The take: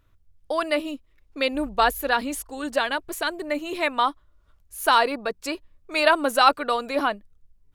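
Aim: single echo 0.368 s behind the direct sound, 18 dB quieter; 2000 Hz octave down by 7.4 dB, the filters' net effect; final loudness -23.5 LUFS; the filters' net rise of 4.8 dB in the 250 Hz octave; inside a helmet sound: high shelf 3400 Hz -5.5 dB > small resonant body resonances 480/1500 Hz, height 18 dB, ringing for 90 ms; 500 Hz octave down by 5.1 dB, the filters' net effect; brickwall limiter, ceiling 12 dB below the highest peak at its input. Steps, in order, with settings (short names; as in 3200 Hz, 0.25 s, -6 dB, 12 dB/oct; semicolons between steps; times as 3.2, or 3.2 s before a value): bell 250 Hz +8.5 dB; bell 500 Hz -7.5 dB; bell 2000 Hz -8.5 dB; limiter -18.5 dBFS; high shelf 3400 Hz -5.5 dB; echo 0.368 s -18 dB; small resonant body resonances 480/1500 Hz, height 18 dB, ringing for 90 ms; gain +3.5 dB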